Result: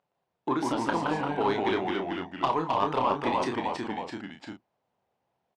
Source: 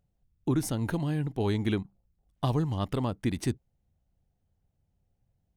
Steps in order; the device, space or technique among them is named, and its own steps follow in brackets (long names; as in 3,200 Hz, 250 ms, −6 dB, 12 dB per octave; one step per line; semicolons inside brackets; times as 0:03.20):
intercom (band-pass filter 440–3,600 Hz; parametric band 1,000 Hz +10 dB 0.49 octaves; soft clipping −22 dBFS, distortion −16 dB; double-tracking delay 30 ms −6.5 dB)
delay with pitch and tempo change per echo 118 ms, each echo −1 semitone, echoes 3
level +5.5 dB